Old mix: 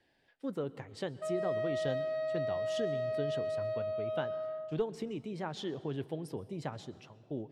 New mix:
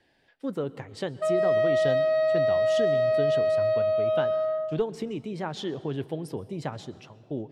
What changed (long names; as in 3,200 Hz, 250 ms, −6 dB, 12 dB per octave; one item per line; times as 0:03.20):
speech +6.0 dB
background +11.5 dB